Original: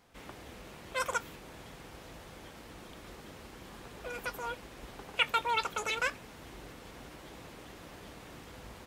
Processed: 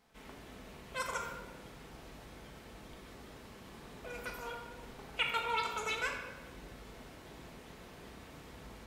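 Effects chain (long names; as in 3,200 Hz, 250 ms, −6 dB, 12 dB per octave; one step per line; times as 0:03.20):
rectangular room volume 870 cubic metres, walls mixed, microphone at 1.5 metres
level −6 dB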